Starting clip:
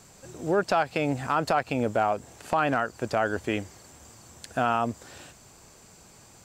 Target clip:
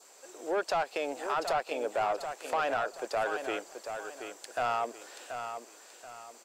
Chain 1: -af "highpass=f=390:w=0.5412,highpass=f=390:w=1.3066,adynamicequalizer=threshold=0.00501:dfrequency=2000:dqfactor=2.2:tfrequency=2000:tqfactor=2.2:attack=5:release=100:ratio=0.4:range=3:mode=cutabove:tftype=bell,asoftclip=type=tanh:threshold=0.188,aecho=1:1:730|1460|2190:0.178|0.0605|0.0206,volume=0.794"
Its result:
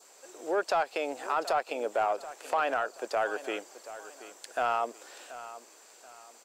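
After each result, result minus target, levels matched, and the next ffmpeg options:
saturation: distortion -9 dB; echo-to-direct -7 dB
-af "highpass=f=390:w=0.5412,highpass=f=390:w=1.3066,adynamicequalizer=threshold=0.00501:dfrequency=2000:dqfactor=2.2:tfrequency=2000:tqfactor=2.2:attack=5:release=100:ratio=0.4:range=3:mode=cutabove:tftype=bell,asoftclip=type=tanh:threshold=0.0891,aecho=1:1:730|1460|2190:0.178|0.0605|0.0206,volume=0.794"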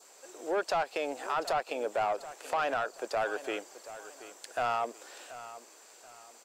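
echo-to-direct -7 dB
-af "highpass=f=390:w=0.5412,highpass=f=390:w=1.3066,adynamicequalizer=threshold=0.00501:dfrequency=2000:dqfactor=2.2:tfrequency=2000:tqfactor=2.2:attack=5:release=100:ratio=0.4:range=3:mode=cutabove:tftype=bell,asoftclip=type=tanh:threshold=0.0891,aecho=1:1:730|1460|2190|2920:0.398|0.135|0.046|0.0156,volume=0.794"

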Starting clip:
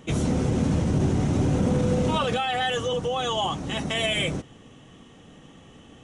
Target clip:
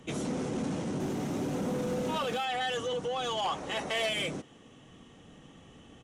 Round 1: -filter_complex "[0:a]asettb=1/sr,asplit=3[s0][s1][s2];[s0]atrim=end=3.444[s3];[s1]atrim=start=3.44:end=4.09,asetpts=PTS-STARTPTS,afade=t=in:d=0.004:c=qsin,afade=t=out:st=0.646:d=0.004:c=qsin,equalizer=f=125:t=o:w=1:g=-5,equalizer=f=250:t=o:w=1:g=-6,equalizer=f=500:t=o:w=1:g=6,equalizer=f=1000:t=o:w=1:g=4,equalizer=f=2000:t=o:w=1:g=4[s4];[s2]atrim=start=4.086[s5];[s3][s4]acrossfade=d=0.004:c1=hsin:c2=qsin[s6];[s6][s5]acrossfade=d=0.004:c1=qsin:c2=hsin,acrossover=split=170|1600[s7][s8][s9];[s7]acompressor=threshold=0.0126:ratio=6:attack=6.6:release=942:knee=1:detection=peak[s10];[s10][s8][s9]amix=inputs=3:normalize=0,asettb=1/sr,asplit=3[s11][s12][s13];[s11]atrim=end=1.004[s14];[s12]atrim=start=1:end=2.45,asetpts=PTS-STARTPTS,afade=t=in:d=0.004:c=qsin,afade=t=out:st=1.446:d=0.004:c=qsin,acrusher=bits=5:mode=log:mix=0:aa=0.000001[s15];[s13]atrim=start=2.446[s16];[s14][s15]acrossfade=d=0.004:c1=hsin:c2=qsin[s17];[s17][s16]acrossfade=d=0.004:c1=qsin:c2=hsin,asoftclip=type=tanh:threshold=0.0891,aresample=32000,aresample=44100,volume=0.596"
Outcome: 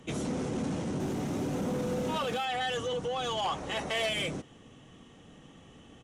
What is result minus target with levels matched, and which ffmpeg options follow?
compression: peak gain reduction -7 dB
-filter_complex "[0:a]asettb=1/sr,asplit=3[s0][s1][s2];[s0]atrim=end=3.444[s3];[s1]atrim=start=3.44:end=4.09,asetpts=PTS-STARTPTS,afade=t=in:d=0.004:c=qsin,afade=t=out:st=0.646:d=0.004:c=qsin,equalizer=f=125:t=o:w=1:g=-5,equalizer=f=250:t=o:w=1:g=-6,equalizer=f=500:t=o:w=1:g=6,equalizer=f=1000:t=o:w=1:g=4,equalizer=f=2000:t=o:w=1:g=4[s4];[s2]atrim=start=4.086[s5];[s3][s4]acrossfade=d=0.004:c1=hsin:c2=qsin[s6];[s6][s5]acrossfade=d=0.004:c1=qsin:c2=hsin,acrossover=split=170|1600[s7][s8][s9];[s7]acompressor=threshold=0.00473:ratio=6:attack=6.6:release=942:knee=1:detection=peak[s10];[s10][s8][s9]amix=inputs=3:normalize=0,asettb=1/sr,asplit=3[s11][s12][s13];[s11]atrim=end=1.004[s14];[s12]atrim=start=1:end=2.45,asetpts=PTS-STARTPTS,afade=t=in:d=0.004:c=qsin,afade=t=out:st=1.446:d=0.004:c=qsin,acrusher=bits=5:mode=log:mix=0:aa=0.000001[s15];[s13]atrim=start=2.446[s16];[s14][s15]acrossfade=d=0.004:c1=hsin:c2=qsin[s17];[s17][s16]acrossfade=d=0.004:c1=qsin:c2=hsin,asoftclip=type=tanh:threshold=0.0891,aresample=32000,aresample=44100,volume=0.596"

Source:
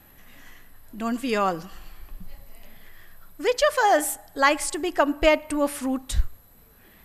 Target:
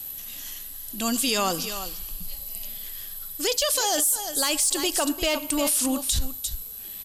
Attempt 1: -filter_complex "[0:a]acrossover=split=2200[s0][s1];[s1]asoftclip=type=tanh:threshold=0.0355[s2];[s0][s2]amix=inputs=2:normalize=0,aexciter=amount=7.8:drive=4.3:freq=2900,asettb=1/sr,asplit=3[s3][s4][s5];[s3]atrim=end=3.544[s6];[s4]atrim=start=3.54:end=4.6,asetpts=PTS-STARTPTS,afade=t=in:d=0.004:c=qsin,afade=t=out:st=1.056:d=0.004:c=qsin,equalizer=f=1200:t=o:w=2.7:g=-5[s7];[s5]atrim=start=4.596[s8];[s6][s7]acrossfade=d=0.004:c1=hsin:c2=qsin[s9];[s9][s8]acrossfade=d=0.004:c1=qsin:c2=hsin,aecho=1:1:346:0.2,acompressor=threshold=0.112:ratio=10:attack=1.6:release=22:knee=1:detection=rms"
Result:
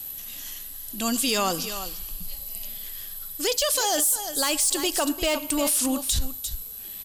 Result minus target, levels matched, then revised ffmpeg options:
saturation: distortion +7 dB
-filter_complex "[0:a]acrossover=split=2200[s0][s1];[s1]asoftclip=type=tanh:threshold=0.0794[s2];[s0][s2]amix=inputs=2:normalize=0,aexciter=amount=7.8:drive=4.3:freq=2900,asettb=1/sr,asplit=3[s3][s4][s5];[s3]atrim=end=3.544[s6];[s4]atrim=start=3.54:end=4.6,asetpts=PTS-STARTPTS,afade=t=in:d=0.004:c=qsin,afade=t=out:st=1.056:d=0.004:c=qsin,equalizer=f=1200:t=o:w=2.7:g=-5[s7];[s5]atrim=start=4.596[s8];[s6][s7]acrossfade=d=0.004:c1=hsin:c2=qsin[s9];[s9][s8]acrossfade=d=0.004:c1=qsin:c2=hsin,aecho=1:1:346:0.2,acompressor=threshold=0.112:ratio=10:attack=1.6:release=22:knee=1:detection=rms"

